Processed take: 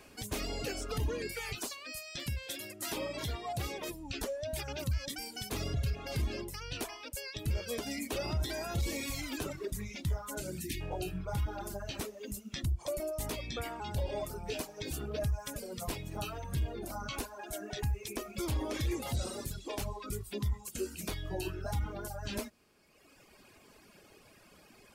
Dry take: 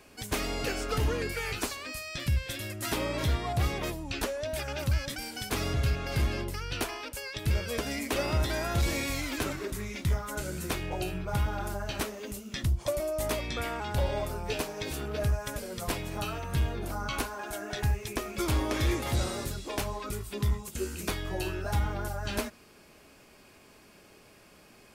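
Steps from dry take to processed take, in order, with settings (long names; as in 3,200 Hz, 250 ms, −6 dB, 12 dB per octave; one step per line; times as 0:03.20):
0:10.60–0:10.80: gain on a spectral selection 390–1,700 Hz −28 dB
reverb reduction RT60 1.4 s
0:01.55–0:03.90: low-shelf EQ 180 Hz −11.5 dB
brickwall limiter −25.5 dBFS, peak gain reduction 6 dB
dynamic equaliser 1,500 Hz, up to −6 dB, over −52 dBFS, Q 0.82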